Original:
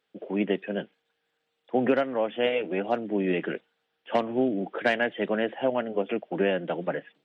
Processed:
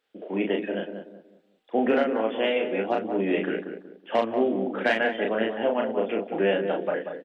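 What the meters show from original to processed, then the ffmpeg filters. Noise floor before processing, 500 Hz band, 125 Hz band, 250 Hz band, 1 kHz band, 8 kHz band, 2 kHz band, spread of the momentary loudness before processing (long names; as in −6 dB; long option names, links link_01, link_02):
−78 dBFS, +2.0 dB, −2.0 dB, +1.0 dB, +2.5 dB, can't be measured, +2.0 dB, 8 LU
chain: -filter_complex "[0:a]equalizer=frequency=140:width=2.7:gain=-14,asplit=2[link_01][link_02];[link_02]adelay=36,volume=-3dB[link_03];[link_01][link_03]amix=inputs=2:normalize=0,asplit=2[link_04][link_05];[link_05]adelay=186,lowpass=frequency=1000:poles=1,volume=-6dB,asplit=2[link_06][link_07];[link_07]adelay=186,lowpass=frequency=1000:poles=1,volume=0.36,asplit=2[link_08][link_09];[link_09]adelay=186,lowpass=frequency=1000:poles=1,volume=0.36,asplit=2[link_10][link_11];[link_11]adelay=186,lowpass=frequency=1000:poles=1,volume=0.36[link_12];[link_04][link_06][link_08][link_10][link_12]amix=inputs=5:normalize=0"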